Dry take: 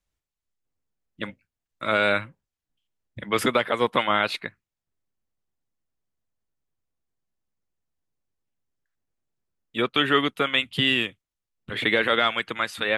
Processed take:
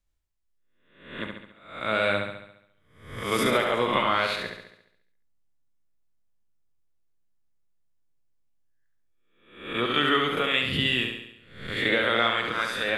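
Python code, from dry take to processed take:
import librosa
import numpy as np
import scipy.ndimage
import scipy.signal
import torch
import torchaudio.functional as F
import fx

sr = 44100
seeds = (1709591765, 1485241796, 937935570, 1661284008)

y = fx.spec_swells(x, sr, rise_s=0.59)
y = fx.low_shelf(y, sr, hz=60.0, db=11.5)
y = fx.room_flutter(y, sr, wall_m=11.9, rt60_s=0.78)
y = y * librosa.db_to_amplitude(-5.0)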